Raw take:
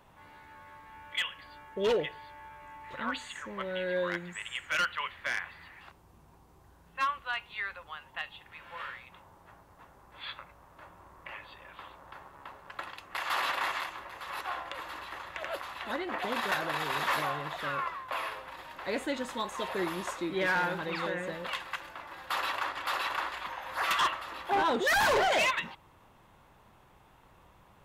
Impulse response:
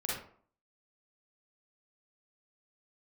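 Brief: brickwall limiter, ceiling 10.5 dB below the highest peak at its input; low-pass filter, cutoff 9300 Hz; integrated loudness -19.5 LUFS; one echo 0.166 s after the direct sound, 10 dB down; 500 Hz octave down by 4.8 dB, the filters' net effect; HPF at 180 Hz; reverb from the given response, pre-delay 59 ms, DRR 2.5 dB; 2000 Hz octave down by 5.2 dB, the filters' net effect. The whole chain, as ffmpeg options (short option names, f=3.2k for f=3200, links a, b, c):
-filter_complex "[0:a]highpass=180,lowpass=9.3k,equalizer=f=500:t=o:g=-5.5,equalizer=f=2k:t=o:g=-6.5,alimiter=level_in=7.5dB:limit=-24dB:level=0:latency=1,volume=-7.5dB,aecho=1:1:166:0.316,asplit=2[a][b];[1:a]atrim=start_sample=2205,adelay=59[c];[b][c]afir=irnorm=-1:irlink=0,volume=-7dB[d];[a][d]amix=inputs=2:normalize=0,volume=20dB"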